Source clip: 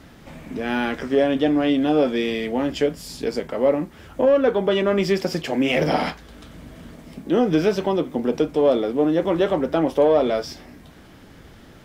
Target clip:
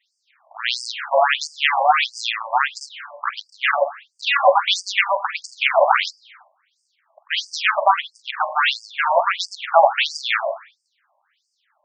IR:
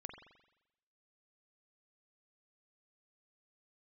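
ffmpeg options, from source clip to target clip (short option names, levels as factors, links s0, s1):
-filter_complex "[0:a]aeval=exprs='0.398*(cos(1*acos(clip(val(0)/0.398,-1,1)))-cos(1*PI/2))+0.00891*(cos(3*acos(clip(val(0)/0.398,-1,1)))-cos(3*PI/2))+0.0501*(cos(7*acos(clip(val(0)/0.398,-1,1)))-cos(7*PI/2))':c=same,asplit=2[s0][s1];[1:a]atrim=start_sample=2205,afade=t=out:st=0.45:d=0.01,atrim=end_sample=20286[s2];[s1][s2]afir=irnorm=-1:irlink=0,volume=2.37[s3];[s0][s3]amix=inputs=2:normalize=0,afftfilt=real='re*between(b*sr/1024,770*pow(6600/770,0.5+0.5*sin(2*PI*1.5*pts/sr))/1.41,770*pow(6600/770,0.5+0.5*sin(2*PI*1.5*pts/sr))*1.41)':imag='im*between(b*sr/1024,770*pow(6600/770,0.5+0.5*sin(2*PI*1.5*pts/sr))/1.41,770*pow(6600/770,0.5+0.5*sin(2*PI*1.5*pts/sr))*1.41)':win_size=1024:overlap=0.75,volume=2.66"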